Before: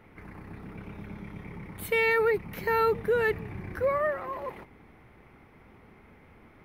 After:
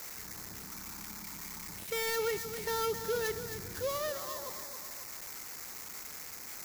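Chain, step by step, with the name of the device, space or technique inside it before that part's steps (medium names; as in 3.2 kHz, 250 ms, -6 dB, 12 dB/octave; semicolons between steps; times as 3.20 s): 0.65–1.69 s: ten-band graphic EQ 125 Hz -9 dB, 250 Hz +4 dB, 500 Hz -11 dB, 1 kHz +7 dB; filtered feedback delay 269 ms, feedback 31%, low-pass 4.9 kHz, level -11 dB; tape echo 122 ms, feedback 58%, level -17 dB, low-pass 1.6 kHz; budget class-D amplifier (dead-time distortion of 0.15 ms; zero-crossing glitches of -18 dBFS); trim -8.5 dB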